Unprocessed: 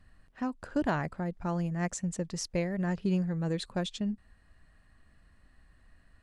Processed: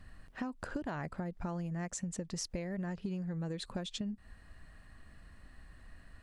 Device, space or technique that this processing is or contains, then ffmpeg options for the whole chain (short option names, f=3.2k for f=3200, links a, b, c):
serial compression, peaks first: -af "acompressor=threshold=-37dB:ratio=6,acompressor=threshold=-44dB:ratio=2,volume=6dB"